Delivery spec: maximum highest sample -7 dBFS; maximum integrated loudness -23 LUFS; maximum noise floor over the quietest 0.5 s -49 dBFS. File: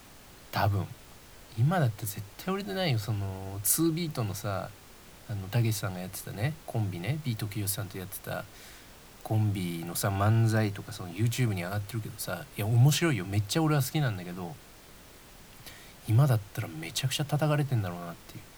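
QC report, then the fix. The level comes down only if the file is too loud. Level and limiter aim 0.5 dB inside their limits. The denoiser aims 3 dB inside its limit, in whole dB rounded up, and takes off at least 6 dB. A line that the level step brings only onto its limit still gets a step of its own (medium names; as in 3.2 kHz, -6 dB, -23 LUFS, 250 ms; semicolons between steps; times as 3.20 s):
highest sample -12.0 dBFS: pass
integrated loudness -30.0 LUFS: pass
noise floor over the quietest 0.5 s -52 dBFS: pass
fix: none needed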